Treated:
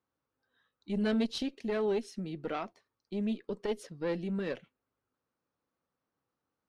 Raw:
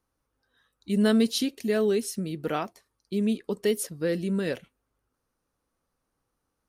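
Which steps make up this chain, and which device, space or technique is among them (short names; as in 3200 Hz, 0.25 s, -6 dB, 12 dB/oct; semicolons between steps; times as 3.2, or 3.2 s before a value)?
valve radio (BPF 110–4100 Hz; tube stage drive 16 dB, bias 0.7; core saturation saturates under 220 Hz); gain -1.5 dB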